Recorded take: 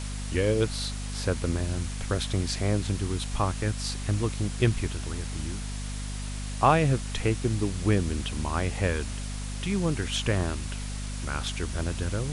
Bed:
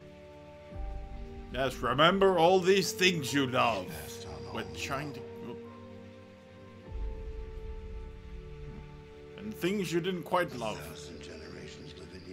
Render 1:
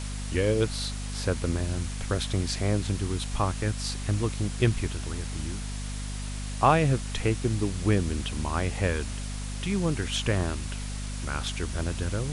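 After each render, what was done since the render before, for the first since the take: nothing audible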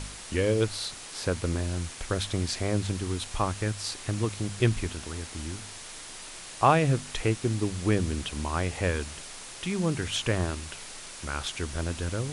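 de-hum 50 Hz, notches 5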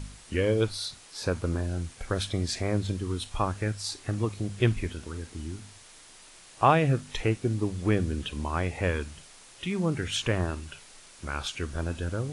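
noise print and reduce 9 dB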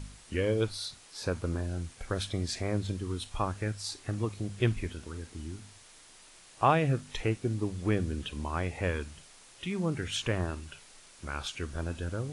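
gain -3.5 dB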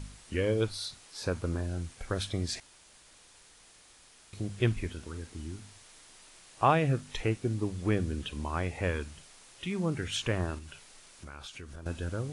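2.6–4.33 room tone; 10.58–11.86 compressor, threshold -41 dBFS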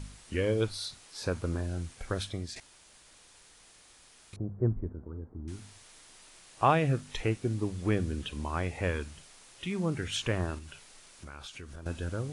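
2.11–2.56 fade out, to -9 dB; 4.36–5.48 Gaussian blur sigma 8.9 samples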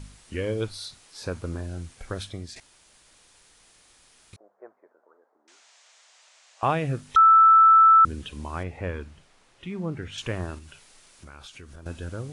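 4.36–6.63 elliptic band-pass 600–7200 Hz, stop band 70 dB; 7.16–8.05 bleep 1320 Hz -11 dBFS; 8.63–10.18 LPF 1900 Hz 6 dB/oct

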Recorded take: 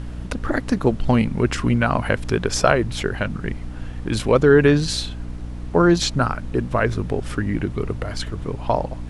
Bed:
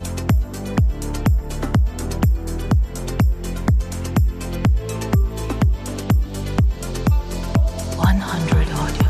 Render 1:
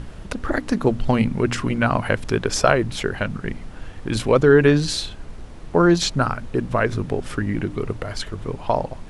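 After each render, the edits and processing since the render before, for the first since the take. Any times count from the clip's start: de-hum 60 Hz, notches 5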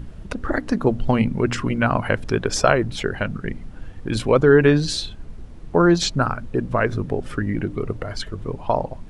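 denoiser 8 dB, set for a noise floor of -37 dBFS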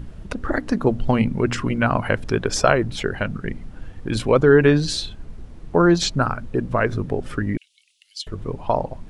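7.57–8.27 steep high-pass 2800 Hz 48 dB/oct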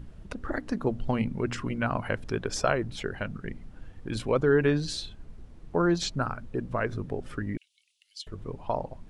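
gain -9 dB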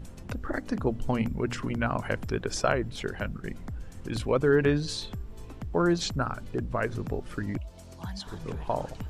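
add bed -22 dB

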